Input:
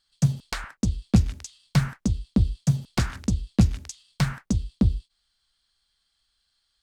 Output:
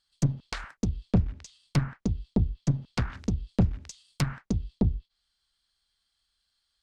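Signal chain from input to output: valve stage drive 14 dB, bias 0.7; 3.48–4.23 s: treble shelf 7.8 kHz +9 dB; low-pass that closes with the level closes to 1.6 kHz, closed at -22.5 dBFS

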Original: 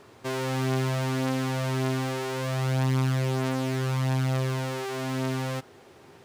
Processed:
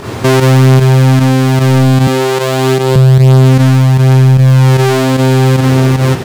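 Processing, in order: in parallel at +2 dB: compression, threshold -33 dBFS, peak gain reduction 10.5 dB; on the sum: tone controls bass +7 dB, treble 0 dB; saturation -20 dBFS, distortion -12 dB; on a send: delay 543 ms -6.5 dB; on the sum: volume shaper 151 bpm, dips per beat 1, -10 dB, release 110 ms; 2.07–2.96 s: high-pass 180 Hz 24 dB/octave; loudness maximiser +23.5 dB; trim -1 dB

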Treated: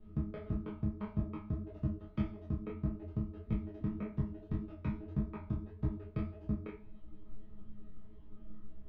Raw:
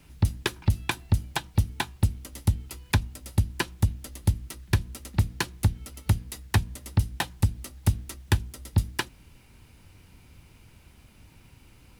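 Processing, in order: low-pass that closes with the level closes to 720 Hz, closed at -22 dBFS; tilt EQ -3 dB/octave; in parallel at +1.5 dB: peak limiter -19.5 dBFS, peak gain reduction 18 dB; on the sum: chord resonator D#3 fifth, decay 0.56 s; on a send at -23 dB: reverberation RT60 0.80 s, pre-delay 90 ms; on the sum: speed mistake 33 rpm record played at 45 rpm; tape spacing loss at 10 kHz 41 dB; detune thickener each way 59 cents; trim +7.5 dB

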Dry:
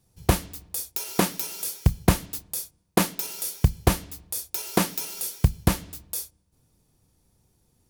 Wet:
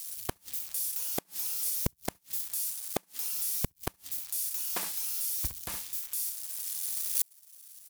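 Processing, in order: zero-crossing glitches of -21.5 dBFS; recorder AGC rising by 7.2 dB/s; 4.20–6.22 s: peaking EQ 160 Hz -7 dB 2.9 oct; early reflections 55 ms -15.5 dB, 65 ms -6.5 dB; gate -16 dBFS, range -18 dB; bass shelf 470 Hz -11.5 dB; inverted gate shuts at -19 dBFS, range -39 dB; warped record 33 1/3 rpm, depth 100 cents; trim +6 dB

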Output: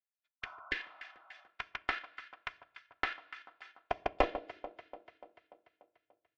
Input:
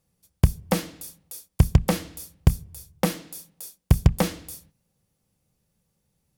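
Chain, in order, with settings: high-pass sweep 1.4 kHz -> 110 Hz, 3.09–6.10 s; gate -57 dBFS, range -21 dB; inverse Chebyshev low-pass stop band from 11 kHz, stop band 70 dB; peaking EQ 1.1 kHz -8.5 dB 0.25 oct; echo whose repeats swap between lows and highs 146 ms, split 1.2 kHz, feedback 75%, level -10.5 dB; on a send at -10.5 dB: reverberation RT60 0.50 s, pre-delay 4 ms; on the sum: Chebyshev shaper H 4 -18 dB, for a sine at -6.5 dBFS; comb 2.9 ms, depth 76%; transient shaper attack +1 dB, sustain -7 dB; spectral replace 0.46–1.43 s, 560–1500 Hz both; trim -6 dB

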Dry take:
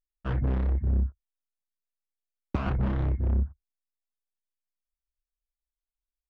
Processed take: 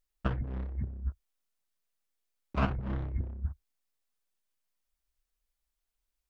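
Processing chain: compressor with a negative ratio -31 dBFS, ratio -0.5

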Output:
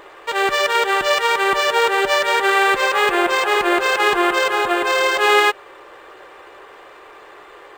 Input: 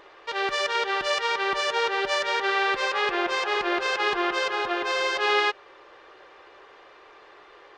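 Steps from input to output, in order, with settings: decimation joined by straight lines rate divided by 4×; trim +9 dB

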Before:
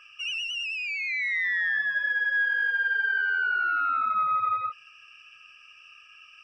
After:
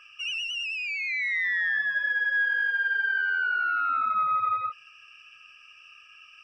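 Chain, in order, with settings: 2.62–3.90 s: bass shelf 410 Hz -6.5 dB

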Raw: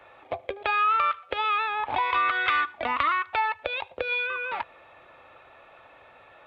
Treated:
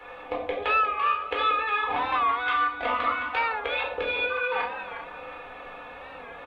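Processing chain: comb 4.1 ms, depth 80%; compression 6:1, threshold -33 dBFS, peak gain reduction 15.5 dB; echo whose repeats swap between lows and highs 182 ms, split 840 Hz, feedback 56%, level -5 dB; simulated room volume 730 m³, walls furnished, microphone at 4.1 m; warped record 45 rpm, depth 100 cents; trim +2 dB

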